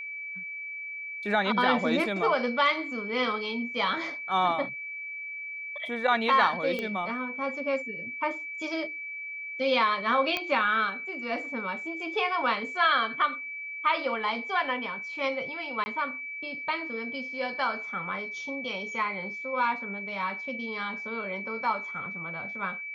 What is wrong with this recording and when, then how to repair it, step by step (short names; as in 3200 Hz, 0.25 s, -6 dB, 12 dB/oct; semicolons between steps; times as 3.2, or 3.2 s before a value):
tone 2300 Hz -35 dBFS
6.79 pop -19 dBFS
10.37 pop -14 dBFS
15.84–15.86 gap 20 ms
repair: de-click; notch 2300 Hz, Q 30; interpolate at 15.84, 20 ms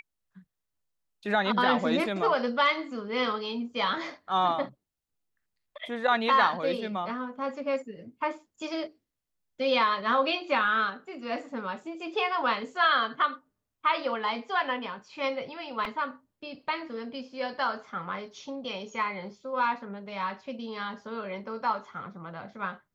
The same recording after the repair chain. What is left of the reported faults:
none